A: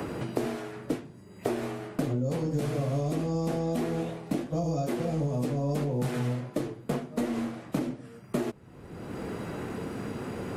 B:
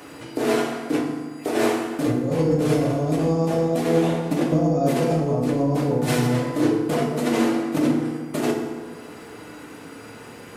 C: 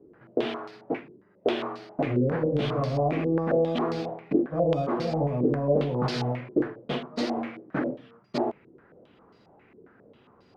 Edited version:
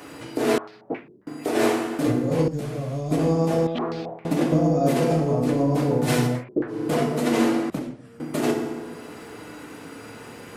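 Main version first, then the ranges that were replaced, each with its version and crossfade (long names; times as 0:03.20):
B
0:00.58–0:01.27: punch in from C
0:02.48–0:03.11: punch in from A
0:03.67–0:04.25: punch in from C
0:06.33–0:06.79: punch in from C, crossfade 0.24 s
0:07.70–0:08.20: punch in from A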